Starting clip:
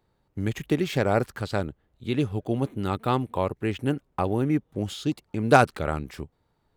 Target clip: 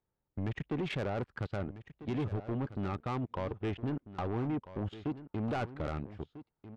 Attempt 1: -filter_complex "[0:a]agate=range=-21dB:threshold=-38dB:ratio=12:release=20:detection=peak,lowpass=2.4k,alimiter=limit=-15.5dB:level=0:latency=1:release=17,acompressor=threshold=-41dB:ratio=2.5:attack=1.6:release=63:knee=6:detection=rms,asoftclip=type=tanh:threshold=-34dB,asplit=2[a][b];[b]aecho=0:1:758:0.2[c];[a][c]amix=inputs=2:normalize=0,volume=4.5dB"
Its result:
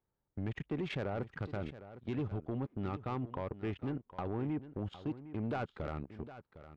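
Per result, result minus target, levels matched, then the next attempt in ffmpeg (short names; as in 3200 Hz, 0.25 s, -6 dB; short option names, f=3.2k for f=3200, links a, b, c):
echo 0.538 s early; compressor: peak gain reduction +5 dB
-filter_complex "[0:a]agate=range=-21dB:threshold=-38dB:ratio=12:release=20:detection=peak,lowpass=2.4k,alimiter=limit=-15.5dB:level=0:latency=1:release=17,acompressor=threshold=-41dB:ratio=2.5:attack=1.6:release=63:knee=6:detection=rms,asoftclip=type=tanh:threshold=-34dB,asplit=2[a][b];[b]aecho=0:1:1296:0.2[c];[a][c]amix=inputs=2:normalize=0,volume=4.5dB"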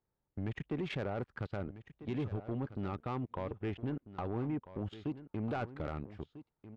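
compressor: peak gain reduction +5 dB
-filter_complex "[0:a]agate=range=-21dB:threshold=-38dB:ratio=12:release=20:detection=peak,lowpass=2.4k,alimiter=limit=-15.5dB:level=0:latency=1:release=17,acompressor=threshold=-33dB:ratio=2.5:attack=1.6:release=63:knee=6:detection=rms,asoftclip=type=tanh:threshold=-34dB,asplit=2[a][b];[b]aecho=0:1:1296:0.2[c];[a][c]amix=inputs=2:normalize=0,volume=4.5dB"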